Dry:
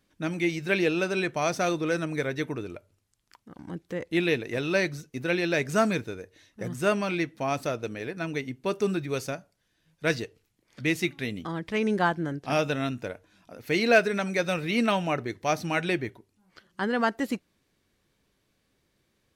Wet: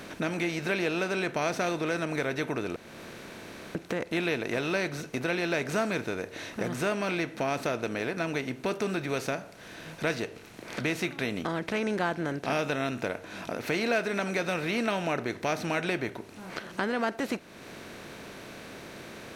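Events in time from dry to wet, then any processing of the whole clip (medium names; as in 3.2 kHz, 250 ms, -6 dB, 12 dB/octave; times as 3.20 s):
2.76–3.75 s: room tone
whole clip: spectral levelling over time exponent 0.6; compression 2:1, threshold -41 dBFS; trim +5 dB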